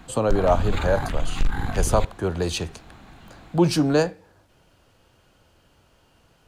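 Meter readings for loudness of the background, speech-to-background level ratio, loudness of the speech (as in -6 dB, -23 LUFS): -29.5 LUFS, 5.5 dB, -24.0 LUFS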